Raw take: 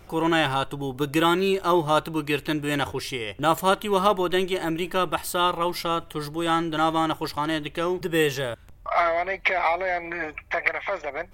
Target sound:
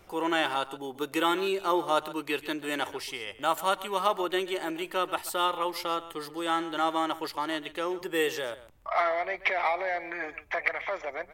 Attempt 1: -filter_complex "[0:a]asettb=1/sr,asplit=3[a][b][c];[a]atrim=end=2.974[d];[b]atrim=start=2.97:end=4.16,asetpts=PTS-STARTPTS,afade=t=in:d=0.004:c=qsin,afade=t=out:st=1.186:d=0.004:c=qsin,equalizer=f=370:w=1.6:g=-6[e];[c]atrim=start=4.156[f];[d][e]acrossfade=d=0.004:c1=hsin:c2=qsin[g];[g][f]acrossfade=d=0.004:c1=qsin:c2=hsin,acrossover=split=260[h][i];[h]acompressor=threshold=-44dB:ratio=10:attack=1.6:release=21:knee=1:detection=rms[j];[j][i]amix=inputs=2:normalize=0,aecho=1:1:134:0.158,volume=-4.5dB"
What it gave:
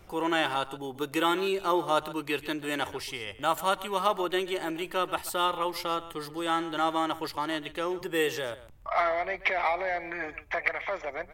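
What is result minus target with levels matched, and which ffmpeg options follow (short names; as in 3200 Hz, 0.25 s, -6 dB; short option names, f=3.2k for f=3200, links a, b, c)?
compressor: peak gain reduction -10 dB
-filter_complex "[0:a]asettb=1/sr,asplit=3[a][b][c];[a]atrim=end=2.974[d];[b]atrim=start=2.97:end=4.16,asetpts=PTS-STARTPTS,afade=t=in:d=0.004:c=qsin,afade=t=out:st=1.186:d=0.004:c=qsin,equalizer=f=370:w=1.6:g=-6[e];[c]atrim=start=4.156[f];[d][e]acrossfade=d=0.004:c1=hsin:c2=qsin[g];[g][f]acrossfade=d=0.004:c1=qsin:c2=hsin,acrossover=split=260[h][i];[h]acompressor=threshold=-55dB:ratio=10:attack=1.6:release=21:knee=1:detection=rms[j];[j][i]amix=inputs=2:normalize=0,aecho=1:1:134:0.158,volume=-4.5dB"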